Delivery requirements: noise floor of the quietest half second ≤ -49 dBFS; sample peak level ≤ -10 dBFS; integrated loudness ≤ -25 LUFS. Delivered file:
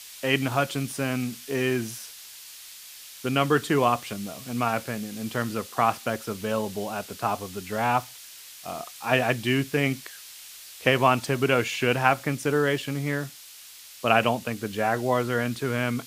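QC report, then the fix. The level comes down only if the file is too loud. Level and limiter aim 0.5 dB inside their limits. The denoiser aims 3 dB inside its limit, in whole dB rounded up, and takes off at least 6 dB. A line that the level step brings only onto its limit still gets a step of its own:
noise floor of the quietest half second -46 dBFS: fail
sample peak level -3.5 dBFS: fail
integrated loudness -26.0 LUFS: OK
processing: denoiser 6 dB, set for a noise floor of -46 dBFS; limiter -10.5 dBFS

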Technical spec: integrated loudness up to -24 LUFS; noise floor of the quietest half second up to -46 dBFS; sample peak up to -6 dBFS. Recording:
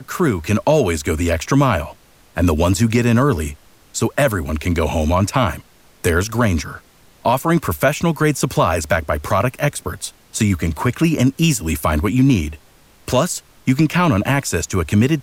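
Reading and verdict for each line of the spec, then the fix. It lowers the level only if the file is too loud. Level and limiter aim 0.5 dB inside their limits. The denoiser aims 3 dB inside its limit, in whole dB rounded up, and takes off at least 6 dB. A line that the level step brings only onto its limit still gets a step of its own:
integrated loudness -18.0 LUFS: fail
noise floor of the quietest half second -49 dBFS: OK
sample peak -4.5 dBFS: fail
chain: gain -6.5 dB

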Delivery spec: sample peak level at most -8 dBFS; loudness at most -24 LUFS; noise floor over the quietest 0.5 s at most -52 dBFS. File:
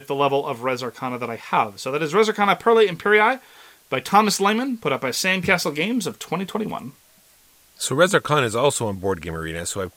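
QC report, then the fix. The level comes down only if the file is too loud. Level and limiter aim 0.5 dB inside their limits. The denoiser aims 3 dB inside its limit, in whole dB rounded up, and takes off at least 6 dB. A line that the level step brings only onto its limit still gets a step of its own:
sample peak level -3.5 dBFS: fail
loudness -21.0 LUFS: fail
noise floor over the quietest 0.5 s -55 dBFS: OK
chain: gain -3.5 dB; limiter -8.5 dBFS

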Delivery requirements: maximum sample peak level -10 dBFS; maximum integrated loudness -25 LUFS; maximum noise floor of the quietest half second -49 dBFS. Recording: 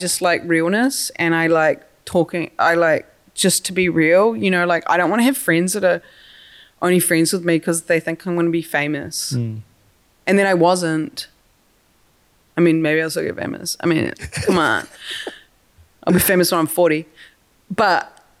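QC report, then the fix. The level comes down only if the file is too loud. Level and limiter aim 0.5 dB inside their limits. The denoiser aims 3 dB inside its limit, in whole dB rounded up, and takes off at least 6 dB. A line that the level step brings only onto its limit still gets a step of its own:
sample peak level -4.5 dBFS: fail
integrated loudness -18.0 LUFS: fail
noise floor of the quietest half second -58 dBFS: OK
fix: gain -7.5 dB

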